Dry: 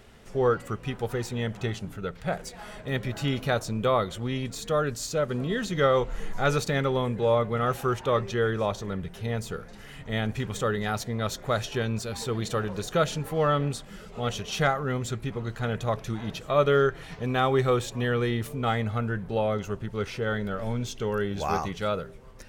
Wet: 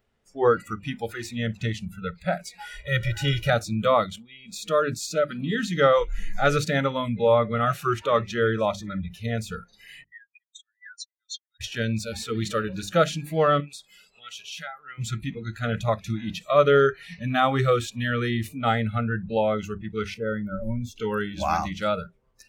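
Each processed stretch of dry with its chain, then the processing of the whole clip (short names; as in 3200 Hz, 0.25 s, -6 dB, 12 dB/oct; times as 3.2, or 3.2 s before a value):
2.6–3.5 notch 4300 Hz, Q 23 + comb 2.1 ms, depth 87%
4.06–4.49 notches 50/100/150 Hz + level quantiser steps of 13 dB
10.04–11.61 spectral contrast raised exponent 2.8 + Chebyshev high-pass 1500 Hz, order 10
13.6–14.98 low shelf 430 Hz -11.5 dB + compressor 3:1, threshold -38 dBFS
20.14–20.96 bell 3700 Hz -11.5 dB 2.8 oct + notch 650 Hz, Q 18
whole clip: notches 50/100/150/200/250/300/350/400 Hz; spectral noise reduction 24 dB; high shelf 5300 Hz -5.5 dB; gain +4.5 dB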